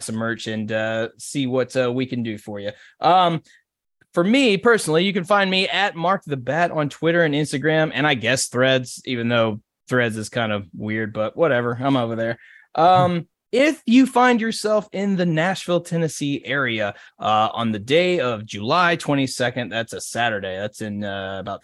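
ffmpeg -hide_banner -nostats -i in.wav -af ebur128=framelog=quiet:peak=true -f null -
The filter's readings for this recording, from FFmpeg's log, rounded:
Integrated loudness:
  I:         -20.4 LUFS
  Threshold: -30.6 LUFS
Loudness range:
  LRA:         3.9 LU
  Threshold: -40.3 LUFS
  LRA low:   -22.4 LUFS
  LRA high:  -18.5 LUFS
True peak:
  Peak:       -5.1 dBFS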